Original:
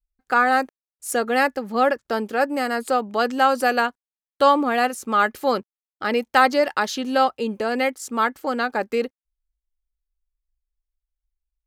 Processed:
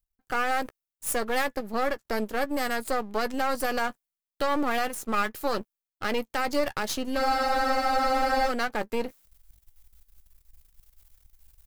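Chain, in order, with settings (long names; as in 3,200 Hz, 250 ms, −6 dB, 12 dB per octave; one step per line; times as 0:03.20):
gain on one half-wave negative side −12 dB
high-shelf EQ 9,700 Hz +11 dB
in parallel at 0 dB: output level in coarse steps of 15 dB
on the sum: brickwall limiter −9.5 dBFS, peak gain reduction 10.5 dB
reversed playback
upward compression, threshold −25 dBFS
reversed playback
double-tracking delay 14 ms −14 dB
frozen spectrum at 0:07.20, 1.29 s
level −5.5 dB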